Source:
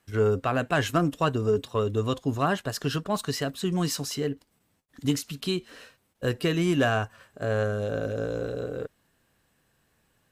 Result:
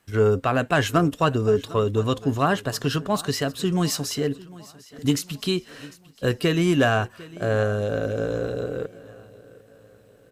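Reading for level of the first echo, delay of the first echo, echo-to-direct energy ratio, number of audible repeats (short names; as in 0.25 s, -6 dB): -20.5 dB, 0.751 s, -19.5 dB, 3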